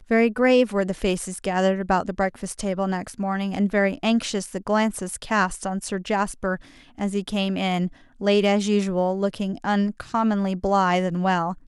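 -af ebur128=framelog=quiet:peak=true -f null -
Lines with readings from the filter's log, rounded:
Integrated loudness:
  I:         -23.4 LUFS
  Threshold: -33.5 LUFS
Loudness range:
  LRA:         3.1 LU
  Threshold: -44.0 LUFS
  LRA low:   -25.6 LUFS
  LRA high:  -22.5 LUFS
True peak:
  Peak:       -7.2 dBFS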